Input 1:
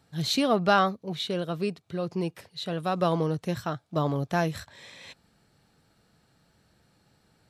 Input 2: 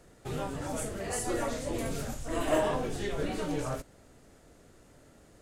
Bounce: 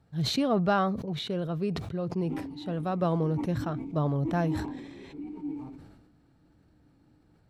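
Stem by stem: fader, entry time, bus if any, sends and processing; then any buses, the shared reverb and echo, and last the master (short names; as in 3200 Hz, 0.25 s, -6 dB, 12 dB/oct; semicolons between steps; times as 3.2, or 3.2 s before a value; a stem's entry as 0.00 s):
-3.0 dB, 0.00 s, no send, high shelf 2300 Hz -11.5 dB
-5.0 dB, 1.95 s, no send, vowel filter u; tilt shelf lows +6.5 dB, about 720 Hz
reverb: off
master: low shelf 130 Hz +9.5 dB; sustainer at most 47 dB/s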